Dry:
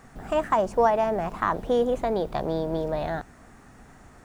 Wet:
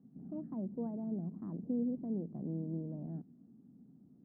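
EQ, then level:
flat-topped band-pass 210 Hz, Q 1.6
−3.0 dB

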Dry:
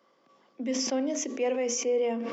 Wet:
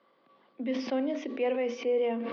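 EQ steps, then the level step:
elliptic low-pass filter 4,200 Hz, stop band 60 dB
0.0 dB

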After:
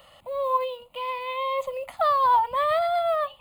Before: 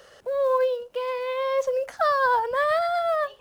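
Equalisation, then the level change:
phaser with its sweep stopped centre 1,600 Hz, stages 6
+3.5 dB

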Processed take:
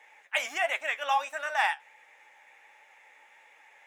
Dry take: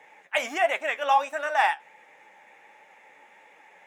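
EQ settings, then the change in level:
high-pass filter 1,400 Hz 6 dB per octave
0.0 dB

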